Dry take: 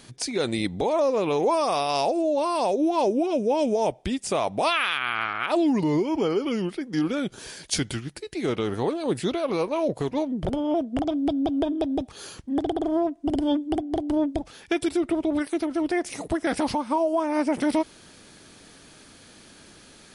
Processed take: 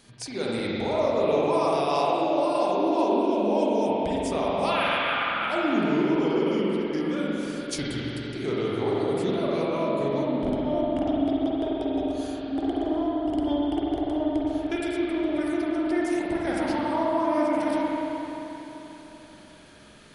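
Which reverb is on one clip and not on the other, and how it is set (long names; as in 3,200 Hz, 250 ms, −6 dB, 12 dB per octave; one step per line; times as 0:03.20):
spring reverb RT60 3.5 s, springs 43/48 ms, chirp 20 ms, DRR −6 dB
level −7 dB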